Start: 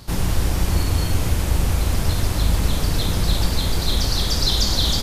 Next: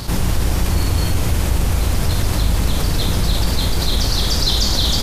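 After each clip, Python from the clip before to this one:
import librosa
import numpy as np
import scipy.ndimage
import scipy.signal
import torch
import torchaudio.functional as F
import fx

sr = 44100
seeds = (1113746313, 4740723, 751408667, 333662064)

y = fx.env_flatten(x, sr, amount_pct=50)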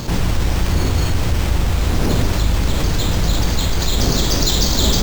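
y = fx.dmg_wind(x, sr, seeds[0], corner_hz=310.0, level_db=-26.0)
y = fx.sample_hold(y, sr, seeds[1], rate_hz=11000.0, jitter_pct=0)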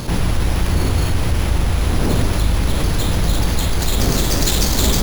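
y = fx.tracing_dist(x, sr, depth_ms=0.47)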